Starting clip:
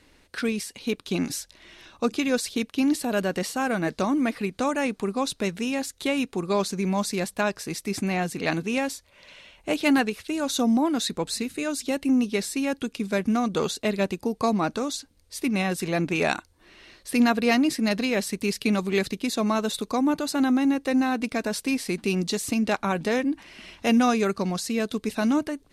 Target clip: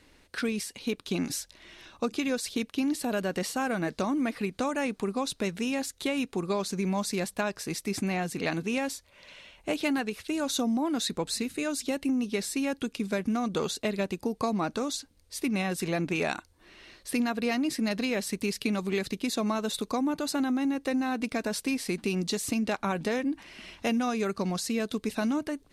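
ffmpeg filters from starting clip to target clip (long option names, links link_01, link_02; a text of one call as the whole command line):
ffmpeg -i in.wav -af "acompressor=threshold=-23dB:ratio=6,volume=-1.5dB" out.wav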